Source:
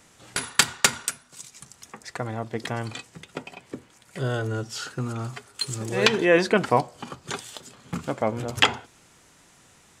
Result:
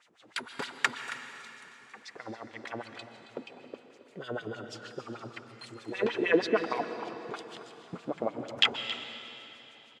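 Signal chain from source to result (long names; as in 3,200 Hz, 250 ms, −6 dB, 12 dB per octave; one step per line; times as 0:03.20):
auto-filter band-pass sine 6.4 Hz 270–3,900 Hz
single-tap delay 273 ms −14 dB
convolution reverb RT60 3.4 s, pre-delay 118 ms, DRR 9 dB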